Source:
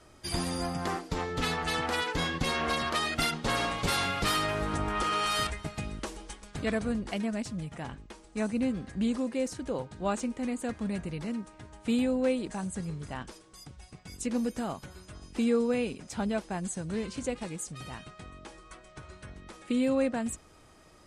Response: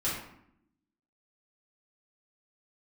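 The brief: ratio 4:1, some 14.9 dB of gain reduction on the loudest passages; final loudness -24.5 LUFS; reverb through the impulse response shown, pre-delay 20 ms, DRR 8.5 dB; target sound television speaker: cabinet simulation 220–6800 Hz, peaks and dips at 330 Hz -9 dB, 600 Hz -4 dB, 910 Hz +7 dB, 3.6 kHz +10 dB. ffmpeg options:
-filter_complex "[0:a]acompressor=threshold=0.00794:ratio=4,asplit=2[s0][s1];[1:a]atrim=start_sample=2205,adelay=20[s2];[s1][s2]afir=irnorm=-1:irlink=0,volume=0.168[s3];[s0][s3]amix=inputs=2:normalize=0,highpass=f=220:w=0.5412,highpass=f=220:w=1.3066,equalizer=f=330:t=q:w=4:g=-9,equalizer=f=600:t=q:w=4:g=-4,equalizer=f=910:t=q:w=4:g=7,equalizer=f=3600:t=q:w=4:g=10,lowpass=f=6800:w=0.5412,lowpass=f=6800:w=1.3066,volume=8.91"

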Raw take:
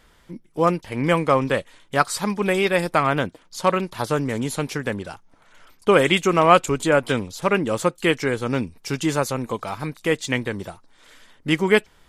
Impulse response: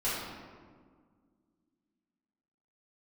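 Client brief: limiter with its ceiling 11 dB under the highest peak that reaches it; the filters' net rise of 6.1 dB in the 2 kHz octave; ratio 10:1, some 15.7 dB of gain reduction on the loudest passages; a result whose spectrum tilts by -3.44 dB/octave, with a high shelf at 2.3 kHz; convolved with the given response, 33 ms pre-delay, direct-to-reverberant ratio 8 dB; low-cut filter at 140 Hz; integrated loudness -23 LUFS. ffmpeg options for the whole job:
-filter_complex "[0:a]highpass=140,equalizer=f=2000:t=o:g=4.5,highshelf=f=2300:g=6,acompressor=threshold=0.0708:ratio=10,alimiter=limit=0.112:level=0:latency=1,asplit=2[s0][s1];[1:a]atrim=start_sample=2205,adelay=33[s2];[s1][s2]afir=irnorm=-1:irlink=0,volume=0.15[s3];[s0][s3]amix=inputs=2:normalize=0,volume=2.66"

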